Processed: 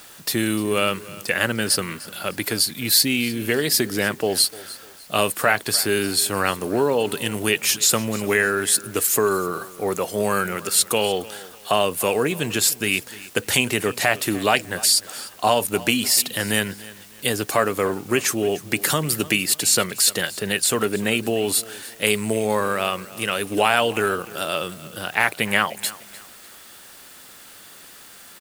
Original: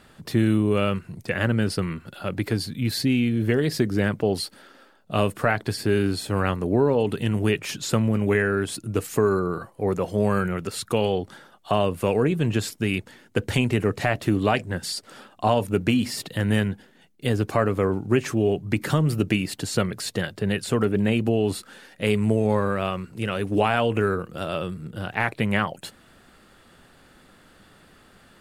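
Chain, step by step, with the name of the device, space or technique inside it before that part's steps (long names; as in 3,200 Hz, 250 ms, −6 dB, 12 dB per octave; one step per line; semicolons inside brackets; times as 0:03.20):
turntable without a phono preamp (RIAA equalisation recording; white noise bed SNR 25 dB)
repeating echo 300 ms, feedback 33%, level −19 dB
level +4 dB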